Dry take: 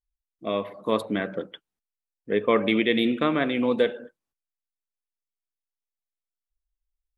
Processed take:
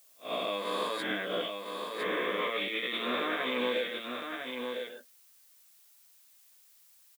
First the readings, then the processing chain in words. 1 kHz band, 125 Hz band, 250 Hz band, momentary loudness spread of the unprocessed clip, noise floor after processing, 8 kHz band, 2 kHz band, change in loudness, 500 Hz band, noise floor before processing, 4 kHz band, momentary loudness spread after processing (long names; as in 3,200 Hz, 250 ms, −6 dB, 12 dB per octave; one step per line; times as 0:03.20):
−3.0 dB, −15.0 dB, −13.0 dB, 13 LU, −61 dBFS, can't be measured, −2.0 dB, −8.5 dB, −7.5 dB, below −85 dBFS, 0.0 dB, 7 LU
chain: peak hold with a rise ahead of every peak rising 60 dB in 1.65 s
noise gate −31 dBFS, range −38 dB
high-pass filter 150 Hz 12 dB per octave
spectral tilt +3.5 dB per octave
brickwall limiter −15.5 dBFS, peak gain reduction 11 dB
downward compressor, threshold −31 dBFS, peak gain reduction 9.5 dB
high-frequency loss of the air 66 metres
double-tracking delay 16 ms −3.5 dB
single-tap delay 1,007 ms −5.5 dB
background noise blue −61 dBFS